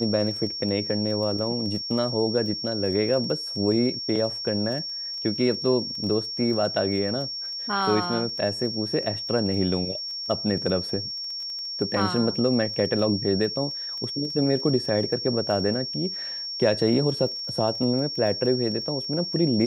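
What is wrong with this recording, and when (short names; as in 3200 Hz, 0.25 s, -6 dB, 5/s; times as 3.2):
crackle 12/s -33 dBFS
tone 5500 Hz -30 dBFS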